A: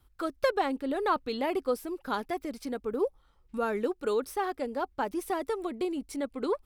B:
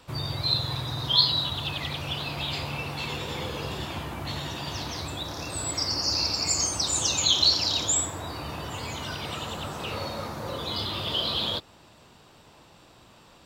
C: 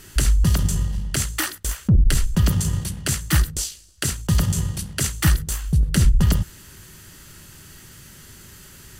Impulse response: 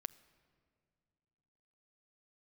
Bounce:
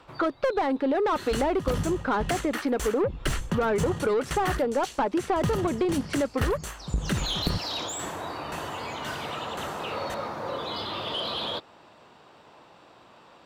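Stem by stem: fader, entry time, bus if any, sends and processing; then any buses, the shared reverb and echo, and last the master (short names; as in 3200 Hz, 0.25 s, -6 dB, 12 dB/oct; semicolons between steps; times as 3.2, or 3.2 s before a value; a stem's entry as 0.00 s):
+0.5 dB, 0.00 s, no send, low-pass opened by the level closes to 2800 Hz, open at -23.5 dBFS
-12.0 dB, 0.00 s, no send, auto duck -21 dB, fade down 0.35 s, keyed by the first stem
+1.0 dB, 1.15 s, no send, notch 4900 Hz; dB-ramp tremolo decaying 1.9 Hz, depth 27 dB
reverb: off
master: overdrive pedal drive 26 dB, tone 1000 Hz, clips at -9.5 dBFS; compressor, threshold -22 dBFS, peak gain reduction 7 dB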